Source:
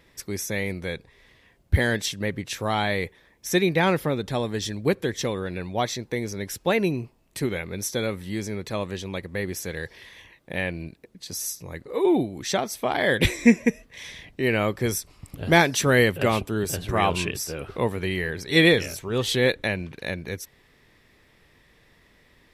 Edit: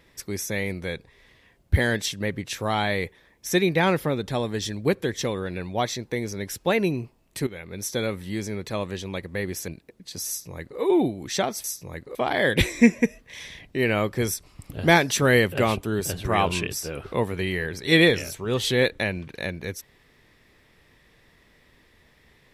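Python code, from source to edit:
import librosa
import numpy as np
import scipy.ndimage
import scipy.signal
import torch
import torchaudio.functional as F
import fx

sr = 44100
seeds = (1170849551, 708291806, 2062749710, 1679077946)

y = fx.edit(x, sr, fx.fade_in_from(start_s=7.47, length_s=0.48, floor_db=-13.5),
    fx.cut(start_s=9.68, length_s=1.15),
    fx.duplicate(start_s=11.43, length_s=0.51, to_s=12.79), tone=tone)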